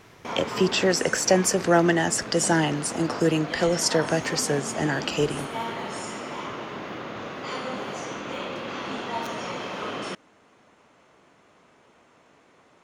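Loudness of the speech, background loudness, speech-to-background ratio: -23.5 LUFS, -33.5 LUFS, 10.0 dB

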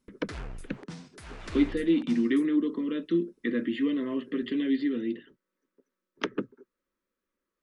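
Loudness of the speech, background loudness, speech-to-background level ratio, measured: -29.0 LUFS, -44.0 LUFS, 15.0 dB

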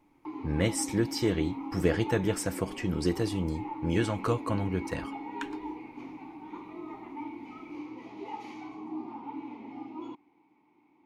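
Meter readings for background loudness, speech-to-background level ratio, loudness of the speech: -40.5 LUFS, 10.0 dB, -30.5 LUFS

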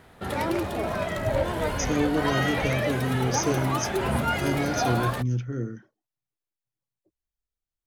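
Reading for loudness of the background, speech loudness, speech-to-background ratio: -27.5 LUFS, -28.5 LUFS, -1.0 dB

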